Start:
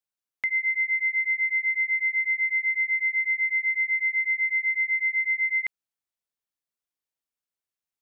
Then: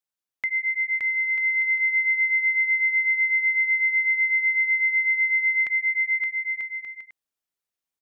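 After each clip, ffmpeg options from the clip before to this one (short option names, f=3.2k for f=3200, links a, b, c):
-af "aecho=1:1:570|940.5|1181|1338|1440:0.631|0.398|0.251|0.158|0.1"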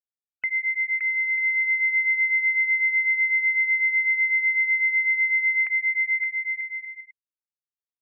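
-af "afftfilt=real='re*gte(hypot(re,im),0.01)':imag='im*gte(hypot(re,im),0.01)':win_size=1024:overlap=0.75"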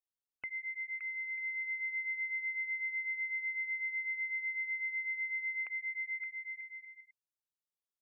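-af "equalizer=f=1.9k:t=o:w=0.46:g=-14.5,volume=-4.5dB"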